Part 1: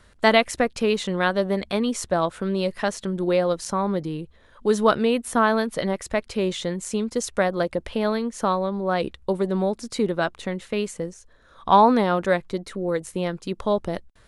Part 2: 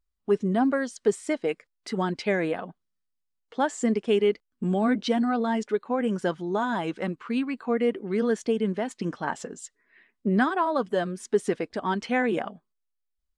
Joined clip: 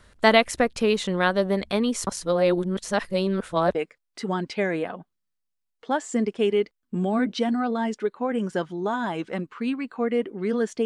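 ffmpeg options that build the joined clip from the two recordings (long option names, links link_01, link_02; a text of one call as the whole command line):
ffmpeg -i cue0.wav -i cue1.wav -filter_complex "[0:a]apad=whole_dur=10.85,atrim=end=10.85,asplit=2[link_01][link_02];[link_01]atrim=end=2.072[link_03];[link_02]atrim=start=2.068:end=3.752,asetpts=PTS-STARTPTS,areverse[link_04];[1:a]atrim=start=1.438:end=8.54[link_05];[link_03][link_04]acrossfade=duration=0.004:curve1=hsin:curve2=hsin[link_06];[link_06][link_05]acrossfade=duration=0.004:curve1=hsin:curve2=hsin" out.wav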